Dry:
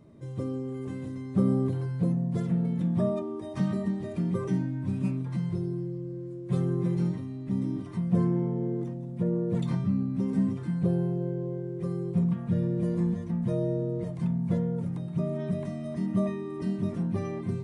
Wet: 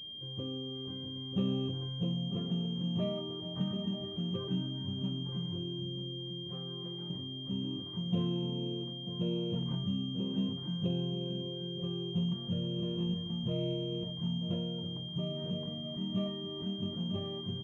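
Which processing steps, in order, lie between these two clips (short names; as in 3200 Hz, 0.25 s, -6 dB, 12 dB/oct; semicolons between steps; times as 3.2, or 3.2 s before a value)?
6.47–7.1 HPF 630 Hz 6 dB/oct; echo 0.938 s -11 dB; pulse-width modulation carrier 3200 Hz; gain -7.5 dB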